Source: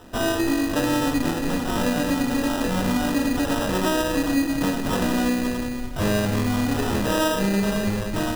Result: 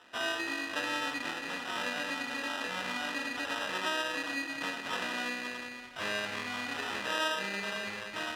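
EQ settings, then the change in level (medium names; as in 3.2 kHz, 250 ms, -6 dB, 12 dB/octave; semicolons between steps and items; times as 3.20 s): band-pass filter 2.3 kHz, Q 1.1; -1.5 dB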